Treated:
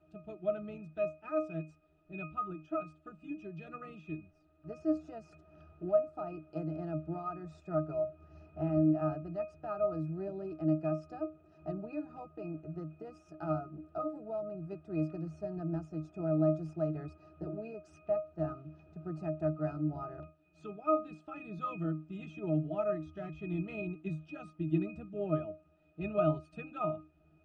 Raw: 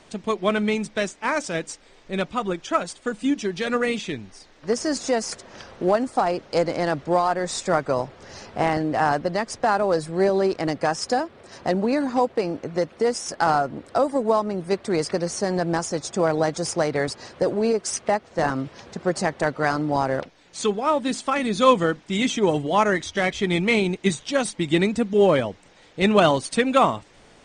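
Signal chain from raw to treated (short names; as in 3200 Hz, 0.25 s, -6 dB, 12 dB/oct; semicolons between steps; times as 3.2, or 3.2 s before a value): octave resonator D#, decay 0.26 s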